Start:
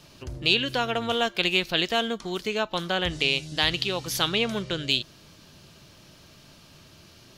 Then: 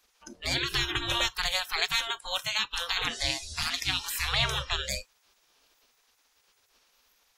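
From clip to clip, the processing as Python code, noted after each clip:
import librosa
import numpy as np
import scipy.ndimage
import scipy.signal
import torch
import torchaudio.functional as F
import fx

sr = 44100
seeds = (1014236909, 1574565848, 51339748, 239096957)

y = fx.spec_gate(x, sr, threshold_db=-15, keep='weak')
y = fx.low_shelf(y, sr, hz=140.0, db=9.5)
y = fx.noise_reduce_blind(y, sr, reduce_db=18)
y = y * librosa.db_to_amplitude(8.0)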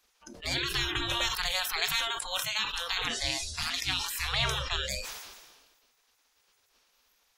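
y = fx.sustainer(x, sr, db_per_s=41.0)
y = y * librosa.db_to_amplitude(-2.5)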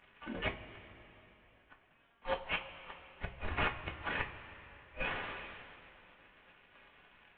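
y = fx.cvsd(x, sr, bps=16000)
y = fx.gate_flip(y, sr, shuts_db=-27.0, range_db=-42)
y = fx.rev_double_slope(y, sr, seeds[0], early_s=0.21, late_s=3.3, knee_db=-18, drr_db=0.5)
y = y * librosa.db_to_amplitude(5.0)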